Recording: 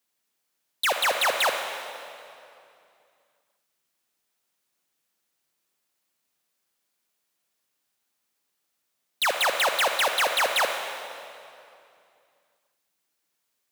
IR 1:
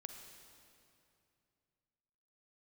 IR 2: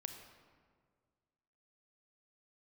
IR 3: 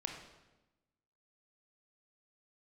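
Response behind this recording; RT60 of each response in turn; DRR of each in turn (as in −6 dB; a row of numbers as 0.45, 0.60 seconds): 1; 2.6, 1.8, 1.0 seconds; 5.0, 5.5, 2.0 decibels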